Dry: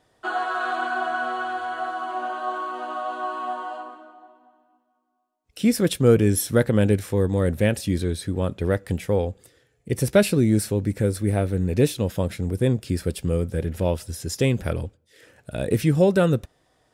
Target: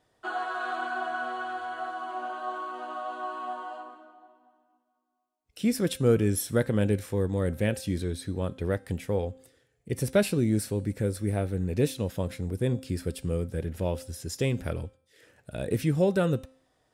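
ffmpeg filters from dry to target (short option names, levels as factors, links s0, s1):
-af "bandreject=f=262.3:t=h:w=4,bandreject=f=524.6:t=h:w=4,bandreject=f=786.9:t=h:w=4,bandreject=f=1049.2:t=h:w=4,bandreject=f=1311.5:t=h:w=4,bandreject=f=1573.8:t=h:w=4,bandreject=f=1836.1:t=h:w=4,bandreject=f=2098.4:t=h:w=4,bandreject=f=2360.7:t=h:w=4,bandreject=f=2623:t=h:w=4,bandreject=f=2885.3:t=h:w=4,bandreject=f=3147.6:t=h:w=4,bandreject=f=3409.9:t=h:w=4,bandreject=f=3672.2:t=h:w=4,bandreject=f=3934.5:t=h:w=4,bandreject=f=4196.8:t=h:w=4,bandreject=f=4459.1:t=h:w=4,bandreject=f=4721.4:t=h:w=4,bandreject=f=4983.7:t=h:w=4,bandreject=f=5246:t=h:w=4,bandreject=f=5508.3:t=h:w=4,bandreject=f=5770.6:t=h:w=4,bandreject=f=6032.9:t=h:w=4,bandreject=f=6295.2:t=h:w=4,bandreject=f=6557.5:t=h:w=4,bandreject=f=6819.8:t=h:w=4,bandreject=f=7082.1:t=h:w=4,bandreject=f=7344.4:t=h:w=4,bandreject=f=7606.7:t=h:w=4,bandreject=f=7869:t=h:w=4,bandreject=f=8131.3:t=h:w=4,bandreject=f=8393.6:t=h:w=4,bandreject=f=8655.9:t=h:w=4,bandreject=f=8918.2:t=h:w=4,bandreject=f=9180.5:t=h:w=4,bandreject=f=9442.8:t=h:w=4,bandreject=f=9705.1:t=h:w=4,bandreject=f=9967.4:t=h:w=4,bandreject=f=10229.7:t=h:w=4,bandreject=f=10492:t=h:w=4,volume=0.501"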